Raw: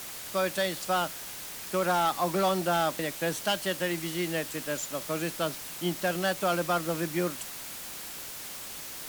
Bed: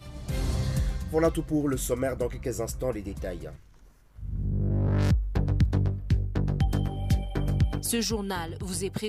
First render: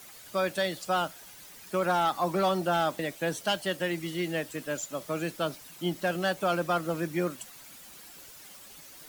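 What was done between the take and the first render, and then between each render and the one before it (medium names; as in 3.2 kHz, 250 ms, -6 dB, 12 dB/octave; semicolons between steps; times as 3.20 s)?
noise reduction 11 dB, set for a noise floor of -41 dBFS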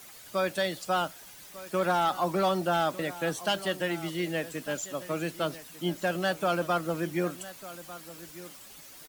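delay 1198 ms -16.5 dB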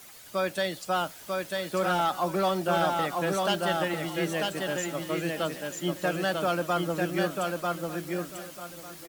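feedback delay 944 ms, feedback 18%, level -3 dB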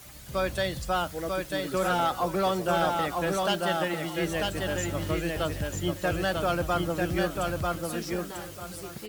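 add bed -11 dB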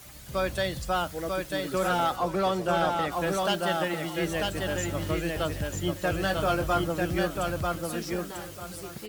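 2.16–3.12 s: treble shelf 10 kHz -9.5 dB; 6.21–6.84 s: doubling 20 ms -6.5 dB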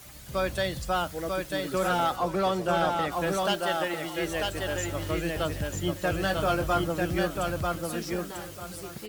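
3.54–5.14 s: peaking EQ 190 Hz -8 dB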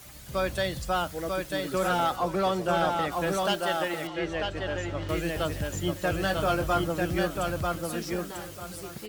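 4.07–5.09 s: distance through air 140 m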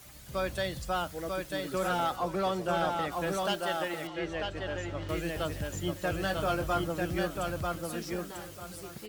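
trim -4 dB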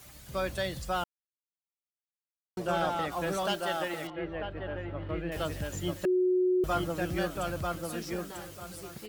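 1.04–2.57 s: mute; 4.10–5.32 s: distance through air 440 m; 6.05–6.64 s: bleep 366 Hz -22.5 dBFS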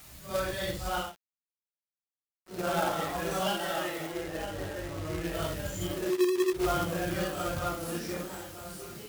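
phase randomisation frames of 200 ms; companded quantiser 4-bit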